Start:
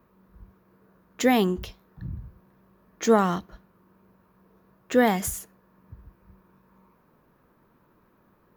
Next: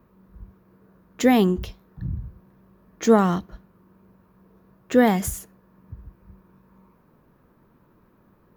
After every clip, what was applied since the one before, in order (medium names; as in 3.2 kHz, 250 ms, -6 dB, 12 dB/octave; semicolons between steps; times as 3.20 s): bass shelf 380 Hz +6.5 dB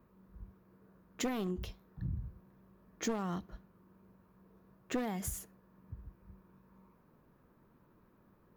one-sided wavefolder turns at -15 dBFS; compression 8:1, threshold -24 dBFS, peak gain reduction 13.5 dB; trim -7.5 dB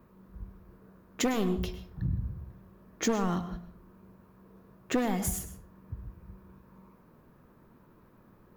reverberation RT60 0.50 s, pre-delay 101 ms, DRR 11.5 dB; trim +7 dB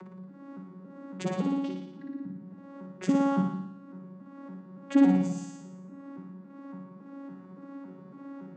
vocoder on a broken chord bare fifth, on F#3, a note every 280 ms; upward compressor, threshold -39 dBFS; on a send: flutter echo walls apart 9.9 m, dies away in 0.81 s; on the sum: trim +2.5 dB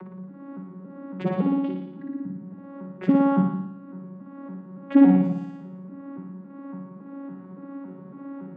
distance through air 450 m; trim +6.5 dB